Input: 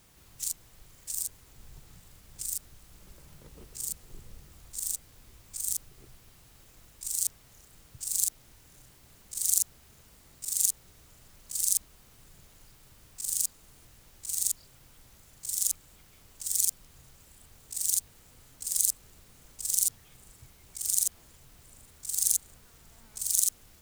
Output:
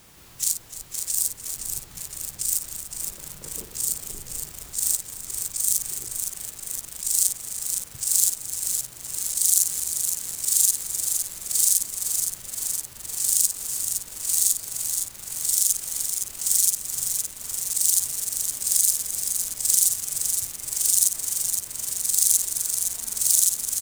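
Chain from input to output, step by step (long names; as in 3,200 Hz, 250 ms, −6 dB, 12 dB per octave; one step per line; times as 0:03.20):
low-shelf EQ 110 Hz −7.5 dB
on a send: multi-tap delay 55/298 ms −9.5/−14 dB
on the sum: boost into a limiter +13 dB
feedback echo at a low word length 514 ms, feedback 80%, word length 6 bits, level −6 dB
level −4 dB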